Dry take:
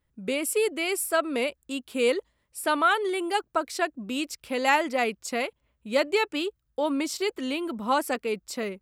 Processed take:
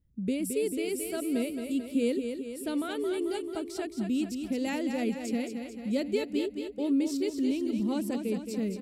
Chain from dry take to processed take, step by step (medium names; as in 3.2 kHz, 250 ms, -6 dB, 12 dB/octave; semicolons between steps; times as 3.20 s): FFT filter 220 Hz 0 dB, 1 kHz -24 dB, 5.1 kHz -14 dB; feedback delay 220 ms, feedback 56%, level -7 dB; dynamic bell 1.2 kHz, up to -5 dB, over -56 dBFS, Q 1.8; trim +6 dB